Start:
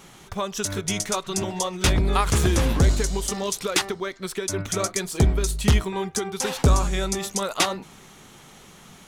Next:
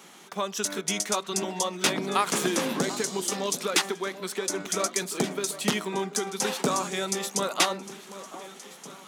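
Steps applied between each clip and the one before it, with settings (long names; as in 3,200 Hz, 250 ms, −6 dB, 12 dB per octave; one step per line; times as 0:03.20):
Butterworth high-pass 180 Hz 36 dB per octave
low-shelf EQ 420 Hz −3 dB
delay that swaps between a low-pass and a high-pass 738 ms, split 1,100 Hz, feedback 64%, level −13 dB
level −1 dB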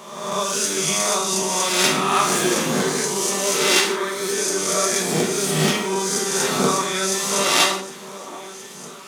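peak hold with a rise ahead of every peak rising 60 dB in 1.19 s
reverb whose tail is shaped and stops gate 200 ms falling, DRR −0.5 dB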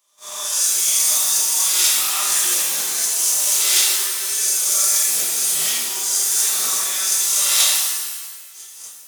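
first difference
noise gate −40 dBFS, range −22 dB
reverb with rising layers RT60 1.2 s, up +7 semitones, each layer −2 dB, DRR 0.5 dB
level +3 dB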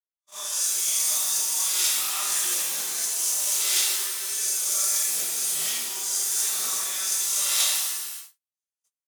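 noise gate −30 dBFS, range −51 dB
level −7 dB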